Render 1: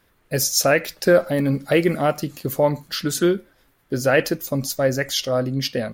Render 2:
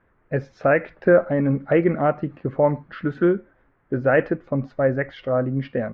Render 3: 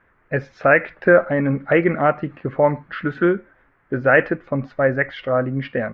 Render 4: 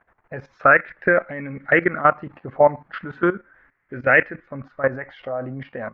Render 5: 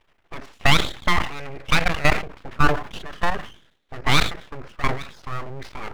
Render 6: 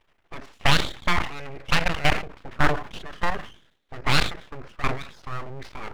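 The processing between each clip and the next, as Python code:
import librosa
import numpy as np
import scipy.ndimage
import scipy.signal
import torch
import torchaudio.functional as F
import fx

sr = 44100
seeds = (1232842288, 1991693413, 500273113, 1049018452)

y1 = scipy.signal.sosfilt(scipy.signal.butter(4, 1900.0, 'lowpass', fs=sr, output='sos'), x)
y2 = fx.peak_eq(y1, sr, hz=2000.0, db=8.5, octaves=2.2)
y3 = fx.level_steps(y2, sr, step_db=15)
y3 = fx.bell_lfo(y3, sr, hz=0.37, low_hz=730.0, high_hz=2200.0, db=11)
y3 = y3 * 10.0 ** (-1.5 / 20.0)
y4 = np.abs(y3)
y4 = fx.sustainer(y4, sr, db_per_s=120.0)
y5 = fx.doppler_dist(y4, sr, depth_ms=0.64)
y5 = y5 * 10.0 ** (-2.5 / 20.0)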